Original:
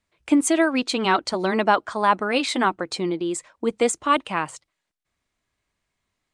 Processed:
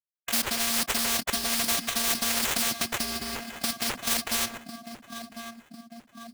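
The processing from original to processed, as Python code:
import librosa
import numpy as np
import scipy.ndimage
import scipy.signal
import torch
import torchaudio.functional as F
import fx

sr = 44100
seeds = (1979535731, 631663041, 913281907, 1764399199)

p1 = scipy.signal.sosfilt(scipy.signal.butter(2, 6300.0, 'lowpass', fs=sr, output='sos'), x)
p2 = fx.low_shelf(p1, sr, hz=410.0, db=3.0)
p3 = fx.over_compress(p2, sr, threshold_db=-24.0, ratio=-0.5)
p4 = p2 + F.gain(torch.from_numpy(p3), 1.0).numpy()
p5 = fx.quant_dither(p4, sr, seeds[0], bits=6, dither='none')
p6 = fx.vocoder(p5, sr, bands=8, carrier='square', carrier_hz=231.0)
p7 = fx.sample_hold(p6, sr, seeds[1], rate_hz=4900.0, jitter_pct=20)
p8 = p7 + fx.echo_feedback(p7, sr, ms=1050, feedback_pct=36, wet_db=-19.5, dry=0)
p9 = fx.spectral_comp(p8, sr, ratio=4.0)
y = F.gain(torch.from_numpy(p9), -6.5).numpy()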